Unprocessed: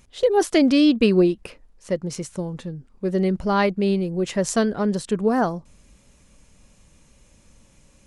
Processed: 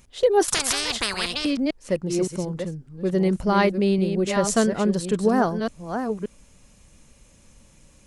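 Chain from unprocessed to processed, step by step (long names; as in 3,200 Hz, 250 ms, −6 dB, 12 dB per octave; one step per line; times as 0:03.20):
delay that plays each chunk backwards 569 ms, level −7 dB
high-shelf EQ 8,900 Hz +4 dB
0:00.48–0:01.45: every bin compressed towards the loudest bin 10 to 1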